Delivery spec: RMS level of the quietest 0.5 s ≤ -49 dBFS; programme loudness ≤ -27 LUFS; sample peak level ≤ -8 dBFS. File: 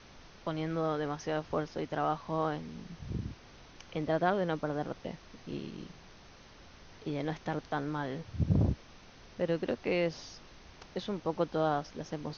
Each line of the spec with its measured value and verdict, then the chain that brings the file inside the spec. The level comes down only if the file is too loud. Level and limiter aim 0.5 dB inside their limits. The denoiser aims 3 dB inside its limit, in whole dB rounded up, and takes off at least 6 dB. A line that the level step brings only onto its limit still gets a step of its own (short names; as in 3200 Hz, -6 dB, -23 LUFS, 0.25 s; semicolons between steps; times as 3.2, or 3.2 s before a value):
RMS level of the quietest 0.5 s -54 dBFS: OK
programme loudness -34.5 LUFS: OK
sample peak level -15.5 dBFS: OK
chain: none